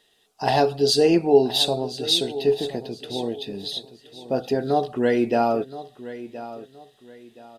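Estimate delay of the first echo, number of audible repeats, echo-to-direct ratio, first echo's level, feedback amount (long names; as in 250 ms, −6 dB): 1,022 ms, 2, −14.5 dB, −15.0 dB, 30%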